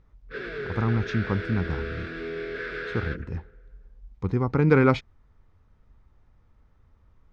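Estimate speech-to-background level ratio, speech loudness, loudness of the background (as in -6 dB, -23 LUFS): 8.5 dB, -26.0 LUFS, -34.5 LUFS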